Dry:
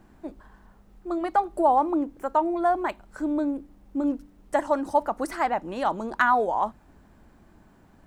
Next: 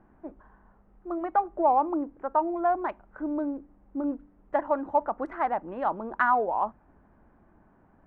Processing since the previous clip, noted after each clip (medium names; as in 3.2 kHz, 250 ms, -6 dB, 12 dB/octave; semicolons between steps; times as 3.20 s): local Wiener filter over 9 samples; low-pass 1.6 kHz 12 dB/octave; bass shelf 450 Hz -6 dB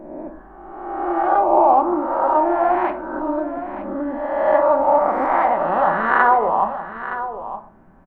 reverse spectral sustain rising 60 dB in 1.52 s; delay 918 ms -11.5 dB; on a send at -6 dB: reverberation RT60 0.45 s, pre-delay 5 ms; on the sum: trim +4.5 dB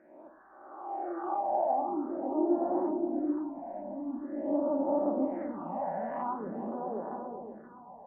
band-pass sweep 1.5 kHz -> 260 Hz, 0.66–1.51 s; band-passed feedback delay 524 ms, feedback 48%, band-pass 560 Hz, level -3.5 dB; phase shifter stages 6, 0.46 Hz, lowest notch 320–2700 Hz; trim -1.5 dB